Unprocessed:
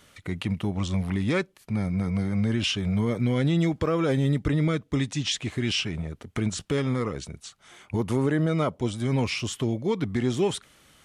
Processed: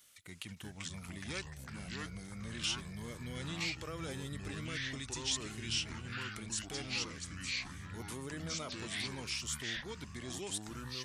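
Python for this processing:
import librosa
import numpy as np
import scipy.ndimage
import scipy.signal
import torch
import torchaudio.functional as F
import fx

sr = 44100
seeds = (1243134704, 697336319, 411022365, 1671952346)

y = librosa.effects.preemphasis(x, coef=0.9, zi=[0.0])
y = fx.echo_pitch(y, sr, ms=282, semitones=-4, count=3, db_per_echo=-3.0)
y = y * 10.0 ** (-2.0 / 20.0)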